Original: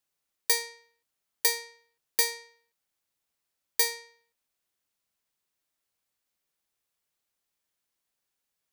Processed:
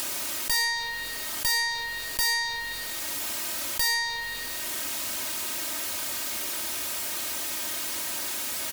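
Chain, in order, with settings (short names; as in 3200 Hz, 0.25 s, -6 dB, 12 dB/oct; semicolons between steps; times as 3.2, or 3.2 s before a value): HPF 74 Hz; comb 3.2 ms, depth 84%; in parallel at +2 dB: upward compressor, threshold -32 dBFS; on the sum: bit-crush 11-bit; tube stage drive 26 dB, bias 0.45; on a send at -15 dB: reverb RT60 2.5 s, pre-delay 43 ms; on the sum: fast leveller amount 70%; gain +3.5 dB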